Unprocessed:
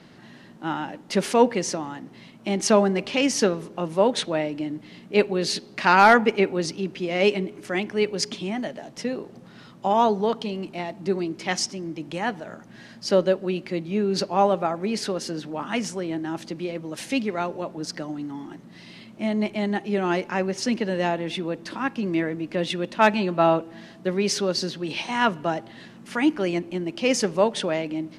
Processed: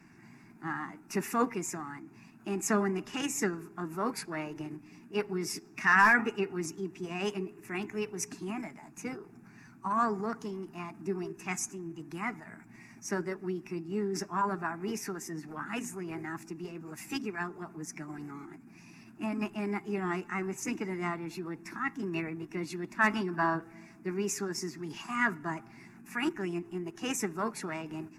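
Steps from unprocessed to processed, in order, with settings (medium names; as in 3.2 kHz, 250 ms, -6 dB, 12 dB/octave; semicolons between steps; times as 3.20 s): coarse spectral quantiser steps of 15 dB; static phaser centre 1.3 kHz, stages 4; formant shift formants +3 st; trim -4.5 dB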